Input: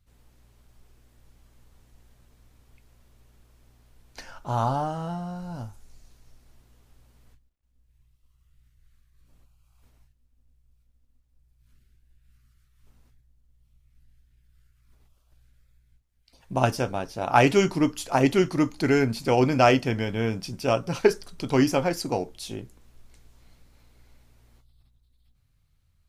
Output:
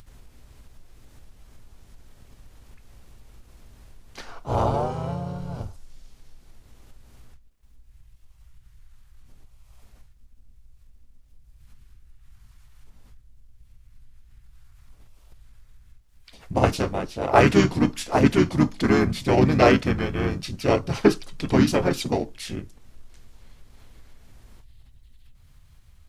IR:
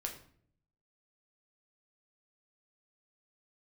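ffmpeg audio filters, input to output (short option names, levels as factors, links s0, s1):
-filter_complex "[0:a]asplit=4[s0][s1][s2][s3];[s1]asetrate=22050,aresample=44100,atempo=2,volume=0.562[s4];[s2]asetrate=29433,aresample=44100,atempo=1.49831,volume=0.447[s5];[s3]asetrate=35002,aresample=44100,atempo=1.25992,volume=0.891[s6];[s0][s4][s5][s6]amix=inputs=4:normalize=0,acompressor=mode=upward:threshold=0.0126:ratio=2.5,volume=0.891"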